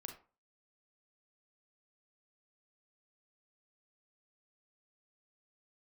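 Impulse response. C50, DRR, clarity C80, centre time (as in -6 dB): 8.5 dB, 3.5 dB, 14.5 dB, 18 ms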